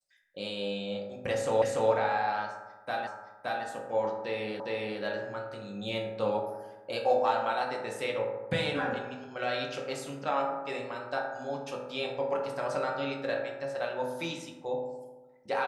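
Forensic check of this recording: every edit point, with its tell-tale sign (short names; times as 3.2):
1.62 repeat of the last 0.29 s
3.07 repeat of the last 0.57 s
4.6 repeat of the last 0.41 s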